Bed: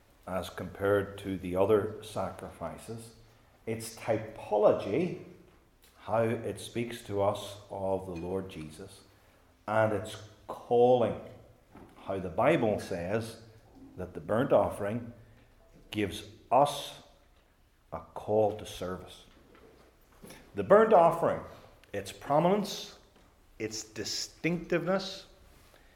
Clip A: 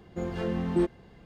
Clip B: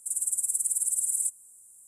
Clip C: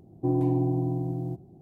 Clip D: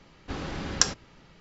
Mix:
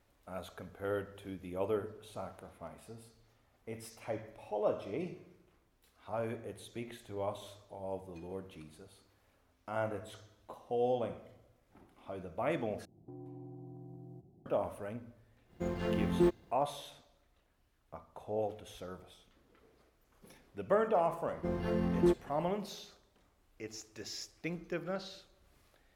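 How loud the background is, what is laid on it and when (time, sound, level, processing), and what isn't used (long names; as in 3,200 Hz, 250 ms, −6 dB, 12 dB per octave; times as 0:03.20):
bed −9 dB
0:12.85: overwrite with C −11 dB + downward compressor 4 to 1, threshold −37 dBFS
0:15.44: mix in A −2 dB, fades 0.10 s + mu-law and A-law mismatch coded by A
0:21.27: mix in A −2.5 dB + linearly interpolated sample-rate reduction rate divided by 6×
not used: B, D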